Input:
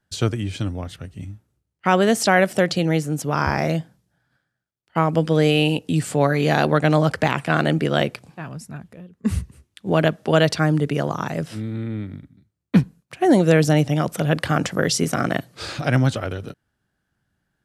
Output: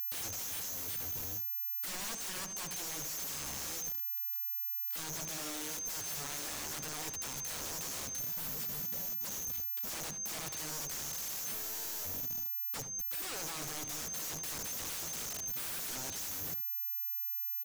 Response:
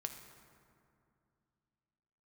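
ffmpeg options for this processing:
-filter_complex "[0:a]aeval=exprs='val(0)+0.0631*sin(2*PI*6300*n/s)':c=same,equalizer=f=11000:t=o:w=0.51:g=-14.5,acompressor=threshold=0.0794:ratio=10,aeval=exprs='(mod(23.7*val(0)+1,2)-1)/23.7':c=same,bandreject=f=60:t=h:w=6,bandreject=f=120:t=h:w=6,bandreject=f=180:t=h:w=6,asplit=2[s0][s1];[s1]adelay=76,lowpass=f=3800:p=1,volume=0.299,asplit=2[s2][s3];[s3]adelay=76,lowpass=f=3800:p=1,volume=0.16[s4];[s0][s2][s4]amix=inputs=3:normalize=0,volume=0.422"

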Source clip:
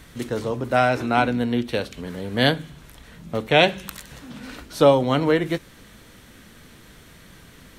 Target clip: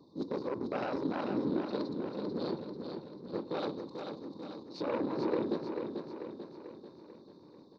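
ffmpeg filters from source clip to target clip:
-af "afftfilt=real='re*(1-between(b*sr/4096,1100,3600))':imag='im*(1-between(b*sr/4096,1100,3600))':win_size=4096:overlap=0.75,alimiter=limit=0.112:level=0:latency=1:release=11,afftfilt=real='hypot(re,im)*cos(2*PI*random(0))':imag='hypot(re,im)*sin(2*PI*random(1))':win_size=512:overlap=0.75,adynamicsmooth=sensitivity=7:basefreq=2400,aeval=exprs='0.168*(cos(1*acos(clip(val(0)/0.168,-1,1)))-cos(1*PI/2))+0.0473*(cos(2*acos(clip(val(0)/0.168,-1,1)))-cos(2*PI/2))+0.0106*(cos(4*acos(clip(val(0)/0.168,-1,1)))-cos(4*PI/2))+0.0168*(cos(8*acos(clip(val(0)/0.168,-1,1)))-cos(8*PI/2))':c=same,highpass=240,equalizer=f=320:t=q:w=4:g=5,equalizer=f=700:t=q:w=4:g=-10,equalizer=f=2400:t=q:w=4:g=5,equalizer=f=4700:t=q:w=4:g=6,lowpass=f=5300:w=0.5412,lowpass=f=5300:w=1.3066,aecho=1:1:441|882|1323|1764|2205|2646|3087:0.501|0.266|0.141|0.0746|0.0395|0.021|0.0111"

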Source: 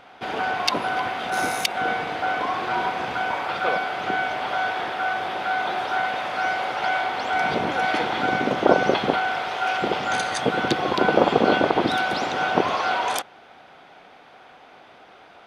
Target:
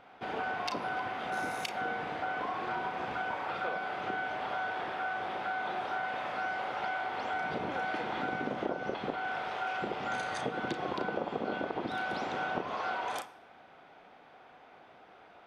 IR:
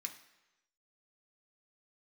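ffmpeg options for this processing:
-filter_complex "[0:a]highshelf=f=2900:g=-9,acompressor=threshold=0.0631:ratio=6,asplit=2[s0][s1];[1:a]atrim=start_sample=2205,adelay=34[s2];[s1][s2]afir=irnorm=-1:irlink=0,volume=0.562[s3];[s0][s3]amix=inputs=2:normalize=0,volume=0.447"

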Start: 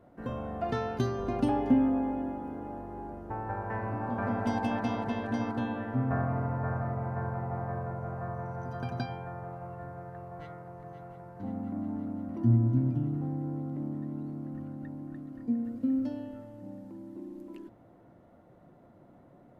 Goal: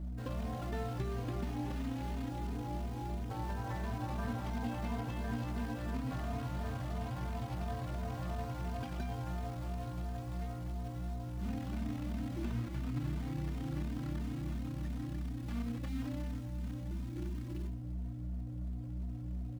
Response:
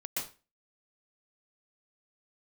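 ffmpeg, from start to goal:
-filter_complex "[0:a]acrusher=bits=2:mode=log:mix=0:aa=0.000001,acompressor=threshold=0.0251:ratio=6,aeval=exprs='val(0)+0.0178*(sin(2*PI*60*n/s)+sin(2*PI*2*60*n/s)/2+sin(2*PI*3*60*n/s)/3+sin(2*PI*4*60*n/s)/4+sin(2*PI*5*60*n/s)/5)':c=same,acrossover=split=4300[s0][s1];[s1]acompressor=threshold=0.00251:ratio=4:attack=1:release=60[s2];[s0][s2]amix=inputs=2:normalize=0,asplit=2[s3][s4];[1:a]atrim=start_sample=2205[s5];[s4][s5]afir=irnorm=-1:irlink=0,volume=0.224[s6];[s3][s6]amix=inputs=2:normalize=0,asplit=2[s7][s8];[s8]adelay=3,afreqshift=2.9[s9];[s7][s9]amix=inputs=2:normalize=1,volume=0.708"

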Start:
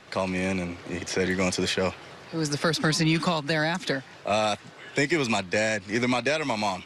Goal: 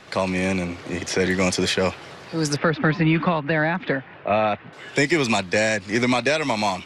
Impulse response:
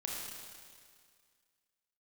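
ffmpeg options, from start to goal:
-filter_complex "[0:a]asettb=1/sr,asplit=3[s0][s1][s2];[s0]atrim=end=2.564[s3];[s1]atrim=start=2.56:end=4.73,asetpts=PTS-STARTPTS,afade=t=in:d=0.004:c=qsin,afade=t=out:st=2.166:d=0.004:c=qsin,lowpass=f=2700:w=0.5412,lowpass=f=2700:w=1.3066[s4];[s2]atrim=start=4.726[s5];[s3][s4]acrossfade=d=0.004:c1=hsin:c2=qsin[s6];[s6][s5]acrossfade=d=0.004:c1=qsin:c2=hsin,volume=1.68"

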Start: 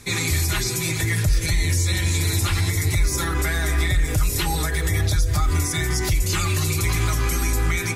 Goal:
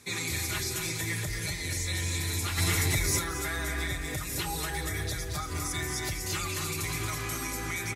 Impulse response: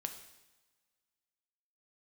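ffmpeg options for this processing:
-filter_complex "[0:a]highpass=f=180:p=1,aecho=1:1:227.4|274.1:0.501|0.282,asplit=3[s0][s1][s2];[s0]afade=t=out:st=2.57:d=0.02[s3];[s1]acontrast=66,afade=t=in:st=2.57:d=0.02,afade=t=out:st=3.18:d=0.02[s4];[s2]afade=t=in:st=3.18:d=0.02[s5];[s3][s4][s5]amix=inputs=3:normalize=0,volume=0.376"

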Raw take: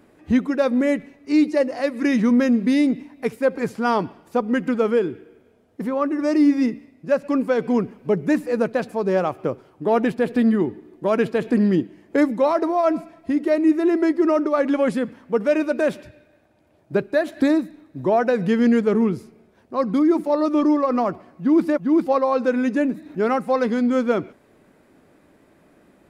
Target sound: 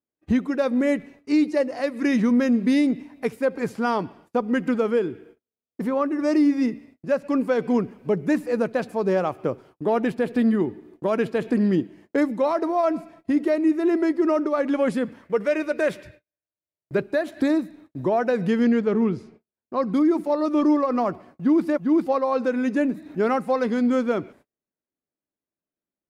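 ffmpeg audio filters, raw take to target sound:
-filter_complex "[0:a]asettb=1/sr,asplit=3[s0][s1][s2];[s0]atrim=end=18.644[s3];[s1]atrim=start=18.64:end=19.83,asetpts=PTS-STARTPTS,afade=t=in:d=0.004:c=qsin,afade=t=out:st=1.186:d=0.004:c=qsin,lowpass=5400[s4];[s2]atrim=start=19.826[s5];[s3][s4]acrossfade=d=0.004:c1=hsin:c2=qsin[s6];[s6][s5]acrossfade=d=0.004:c1=qsin:c2=hsin,agate=range=0.01:threshold=0.00501:ratio=16:detection=peak,asettb=1/sr,asplit=3[s7][s8][s9];[s7]atrim=end=15.214[s10];[s8]atrim=start=15.21:end=16.99,asetpts=PTS-STARTPTS,afade=t=in:d=0.004:c=qsin,afade=t=out:st=1.776:d=0.004:c=qsin,equalizer=f=250:t=o:w=0.33:g=-12,equalizer=f=800:t=o:w=0.33:g=-6,equalizer=f=2000:t=o:w=0.33:g=6[s11];[s9]atrim=start=16.986[s12];[s10][s11]acrossfade=d=0.004:c1=hsin:c2=qsin[s13];[s13][s12]acrossfade=d=0.004:c1=qsin:c2=hsin,alimiter=limit=0.237:level=0:latency=1:release=479"

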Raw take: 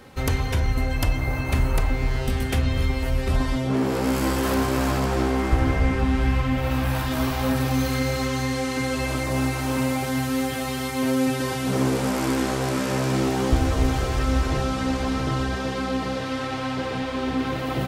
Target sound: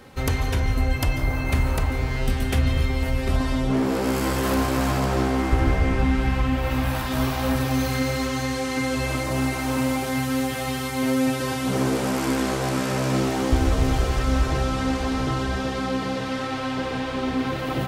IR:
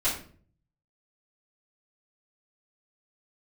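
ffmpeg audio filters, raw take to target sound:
-filter_complex "[0:a]asplit=2[s0][s1];[1:a]atrim=start_sample=2205,adelay=139[s2];[s1][s2]afir=irnorm=-1:irlink=0,volume=0.1[s3];[s0][s3]amix=inputs=2:normalize=0"

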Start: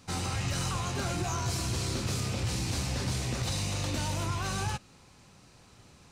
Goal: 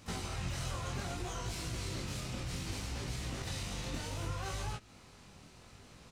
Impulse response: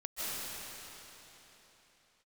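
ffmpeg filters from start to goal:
-filter_complex "[0:a]acompressor=threshold=0.0126:ratio=4,asplit=3[s0][s1][s2];[s1]asetrate=22050,aresample=44100,atempo=2,volume=0.708[s3];[s2]asetrate=58866,aresample=44100,atempo=0.749154,volume=0.282[s4];[s0][s3][s4]amix=inputs=3:normalize=0,flanger=delay=17.5:depth=7.4:speed=0.65,volume=1.19"

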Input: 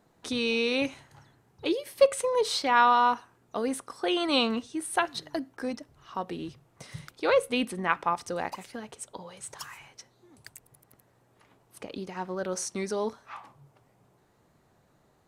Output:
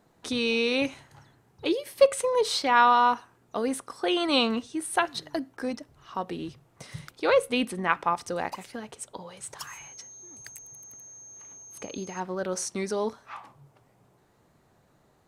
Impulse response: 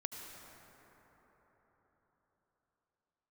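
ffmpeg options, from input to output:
-filter_complex "[0:a]asettb=1/sr,asplit=3[s0][s1][s2];[s0]atrim=end=9.674[s3];[s1]atrim=start=9.67:end=12.2,asetpts=PTS-STARTPTS,afade=t=in:d=0.004:c=qsin,afade=t=out:st=2.526:d=0.004:c=qsin,aeval=exprs='val(0)+0.00501*sin(2*PI*6400*n/s)':c=same[s4];[s2]atrim=start=12.196[s5];[s3][s4]acrossfade=d=0.004:c1=hsin:c2=qsin[s6];[s6][s5]acrossfade=d=0.004:c1=qsin:c2=hsin,volume=1.19"

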